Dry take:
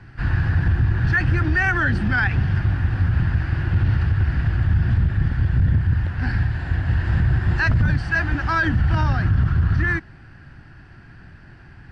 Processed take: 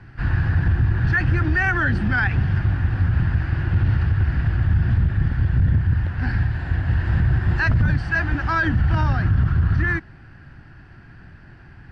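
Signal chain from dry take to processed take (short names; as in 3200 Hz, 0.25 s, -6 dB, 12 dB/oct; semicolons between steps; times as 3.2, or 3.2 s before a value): high shelf 4500 Hz -5.5 dB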